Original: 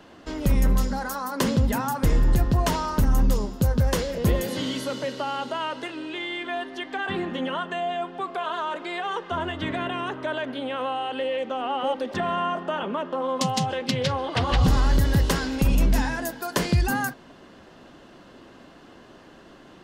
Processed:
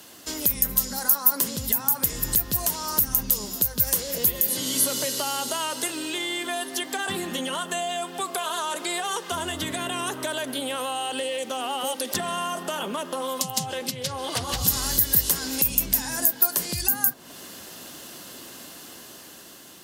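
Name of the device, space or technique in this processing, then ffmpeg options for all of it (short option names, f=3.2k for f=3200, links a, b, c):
FM broadcast chain: -filter_complex "[0:a]highpass=72,dynaudnorm=f=670:g=5:m=6dB,acrossover=split=1500|4500[a][b][c];[a]acompressor=threshold=-25dB:ratio=4[d];[b]acompressor=threshold=-41dB:ratio=4[e];[c]acompressor=threshold=-44dB:ratio=4[f];[d][e][f]amix=inputs=3:normalize=0,aemphasis=mode=production:type=75fm,alimiter=limit=-15dB:level=0:latency=1:release=365,asoftclip=type=hard:threshold=-18.5dB,lowpass=f=15k:w=0.5412,lowpass=f=15k:w=1.3066,aemphasis=mode=production:type=75fm,volume=-2.5dB"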